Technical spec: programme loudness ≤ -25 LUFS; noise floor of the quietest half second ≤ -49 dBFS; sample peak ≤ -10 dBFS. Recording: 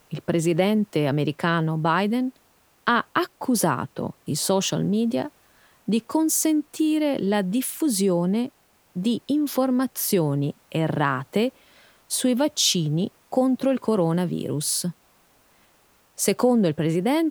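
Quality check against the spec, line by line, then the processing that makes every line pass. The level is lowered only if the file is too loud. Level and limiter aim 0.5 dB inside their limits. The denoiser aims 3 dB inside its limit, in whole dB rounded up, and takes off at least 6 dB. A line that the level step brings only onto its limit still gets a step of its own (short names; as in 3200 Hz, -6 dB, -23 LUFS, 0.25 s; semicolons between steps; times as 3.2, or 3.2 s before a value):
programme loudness -23.5 LUFS: fail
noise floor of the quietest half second -60 dBFS: OK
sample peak -6.0 dBFS: fail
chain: gain -2 dB; limiter -10.5 dBFS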